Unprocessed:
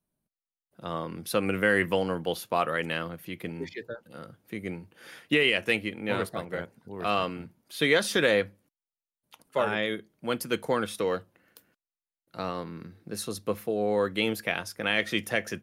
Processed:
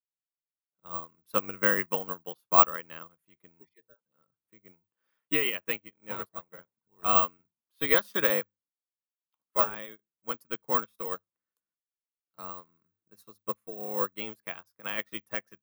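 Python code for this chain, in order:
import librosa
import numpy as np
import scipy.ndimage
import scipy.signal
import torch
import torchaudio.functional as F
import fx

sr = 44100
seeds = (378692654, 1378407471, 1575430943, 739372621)

y = fx.peak_eq(x, sr, hz=1100.0, db=11.0, octaves=0.62)
y = (np.kron(y[::2], np.eye(2)[0]) * 2)[:len(y)]
y = fx.upward_expand(y, sr, threshold_db=-37.0, expansion=2.5)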